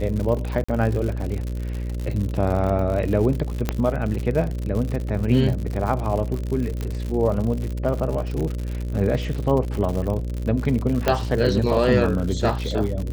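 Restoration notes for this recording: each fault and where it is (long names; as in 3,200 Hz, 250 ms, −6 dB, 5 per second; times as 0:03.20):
mains buzz 60 Hz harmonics 10 −27 dBFS
surface crackle 99 per second −27 dBFS
0:00.64–0:00.69: drop-out 45 ms
0:03.69: click −8 dBFS
0:06.81: click −16 dBFS
0:11.08: click −5 dBFS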